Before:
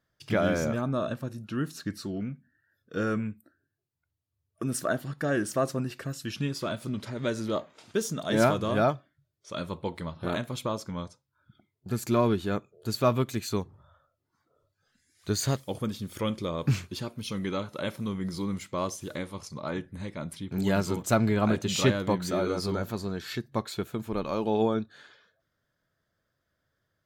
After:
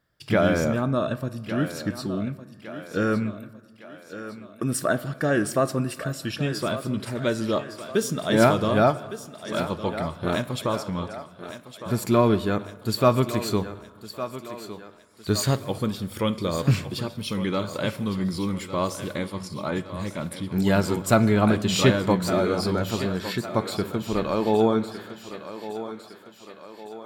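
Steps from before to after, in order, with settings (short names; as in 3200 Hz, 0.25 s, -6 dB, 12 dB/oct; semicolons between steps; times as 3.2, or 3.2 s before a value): notch 6300 Hz, Q 7.3; thinning echo 1.159 s, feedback 54%, high-pass 250 Hz, level -11.5 dB; reverb RT60 1.5 s, pre-delay 8 ms, DRR 15 dB; gain +5 dB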